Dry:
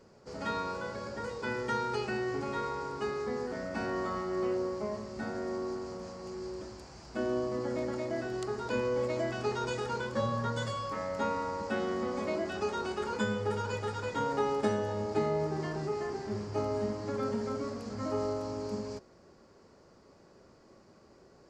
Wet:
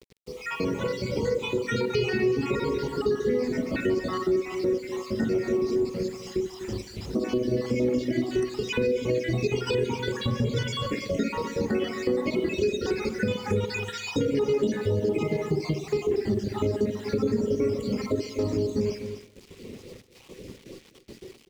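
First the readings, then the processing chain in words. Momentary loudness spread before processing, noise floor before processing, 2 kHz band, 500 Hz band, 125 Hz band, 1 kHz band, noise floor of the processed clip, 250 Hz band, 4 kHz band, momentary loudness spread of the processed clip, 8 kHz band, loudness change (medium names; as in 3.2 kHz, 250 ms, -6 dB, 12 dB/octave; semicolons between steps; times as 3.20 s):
7 LU, -59 dBFS, +4.5 dB, +7.0 dB, +8.5 dB, -2.5 dB, -53 dBFS, +9.0 dB, +8.5 dB, 9 LU, +6.0 dB, +7.0 dB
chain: random holes in the spectrogram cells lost 61%; spring tank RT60 1 s, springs 40/48/58 ms, chirp 20 ms, DRR 1.5 dB; reverb removal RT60 0.9 s; level rider gain up to 11.5 dB; bass shelf 400 Hz -2.5 dB; peak limiter -17.5 dBFS, peak gain reduction 8 dB; bit crusher 9-bit; high-order bell 1 kHz -14.5 dB; delay 248 ms -14 dB; compression 2:1, threshold -34 dBFS, peak gain reduction 7 dB; low-pass 4 kHz 6 dB/octave; trim +8.5 dB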